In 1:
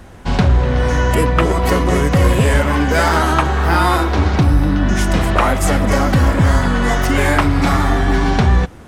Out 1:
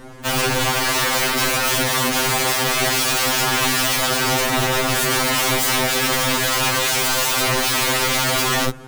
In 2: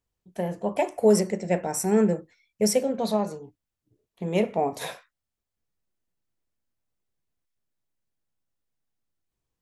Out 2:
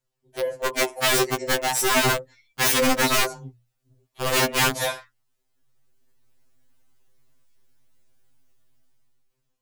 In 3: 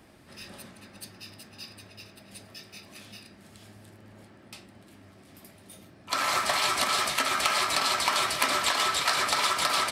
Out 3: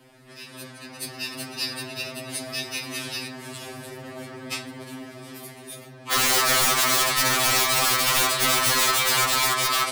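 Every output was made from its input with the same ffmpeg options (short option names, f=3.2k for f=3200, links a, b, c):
-filter_complex "[0:a]bandreject=f=60:t=h:w=6,bandreject=f=120:t=h:w=6,bandreject=f=180:t=h:w=6,asplit=2[a][b];[b]alimiter=limit=-9dB:level=0:latency=1:release=54,volume=-3dB[c];[a][c]amix=inputs=2:normalize=0,dynaudnorm=f=420:g=5:m=13.5dB,aeval=exprs='(mod(3.98*val(0)+1,2)-1)/3.98':c=same,afftfilt=real='re*2.45*eq(mod(b,6),0)':imag='im*2.45*eq(mod(b,6),0)':win_size=2048:overlap=0.75"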